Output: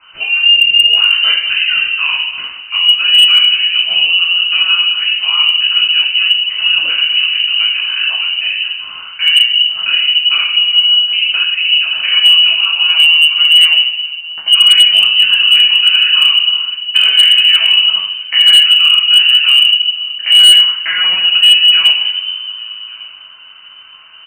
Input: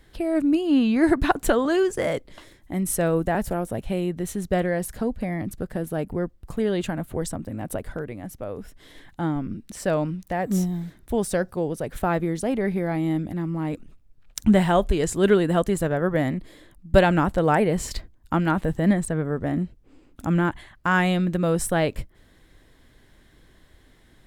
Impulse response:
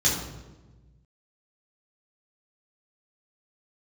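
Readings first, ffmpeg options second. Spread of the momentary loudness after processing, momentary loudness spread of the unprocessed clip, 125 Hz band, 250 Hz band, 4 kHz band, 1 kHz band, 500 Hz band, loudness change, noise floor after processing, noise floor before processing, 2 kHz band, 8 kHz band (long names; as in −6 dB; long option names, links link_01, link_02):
10 LU, 12 LU, below −25 dB, below −25 dB, +38.0 dB, −3.0 dB, below −20 dB, +17.0 dB, −35 dBFS, −56 dBFS, +19.0 dB, +7.5 dB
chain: -filter_complex "[0:a]lowshelf=frequency=100:gain=-4.5,bandreject=frequency=60:width_type=h:width=6,bandreject=frequency=120:width_type=h:width=6,bandreject=frequency=180:width_type=h:width=6,bandreject=frequency=240:width_type=h:width=6,bandreject=frequency=300:width_type=h:width=6,bandreject=frequency=360:width_type=h:width=6,bandreject=frequency=420:width_type=h:width=6,bandreject=frequency=480:width_type=h:width=6,acrossover=split=170[link_01][link_02];[link_01]flanger=delay=17.5:depth=7.9:speed=1.9[link_03];[link_02]acompressor=threshold=-31dB:ratio=16[link_04];[link_03][link_04]amix=inputs=2:normalize=0,aecho=1:1:1155:0.075[link_05];[1:a]atrim=start_sample=2205[link_06];[link_05][link_06]afir=irnorm=-1:irlink=0,lowpass=frequency=2600:width_type=q:width=0.5098,lowpass=frequency=2600:width_type=q:width=0.6013,lowpass=frequency=2600:width_type=q:width=0.9,lowpass=frequency=2600:width_type=q:width=2.563,afreqshift=-3100,volume=5.5dB,asoftclip=hard,volume=-5.5dB,volume=4dB"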